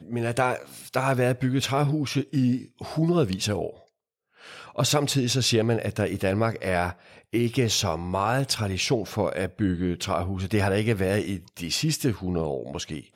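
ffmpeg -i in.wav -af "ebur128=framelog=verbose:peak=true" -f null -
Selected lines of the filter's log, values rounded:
Integrated loudness:
  I:         -25.6 LUFS
  Threshold: -35.9 LUFS
Loudness range:
  LRA:         1.7 LU
  Threshold: -45.8 LUFS
  LRA low:   -26.7 LUFS
  LRA high:  -25.0 LUFS
True peak:
  Peak:       -8.9 dBFS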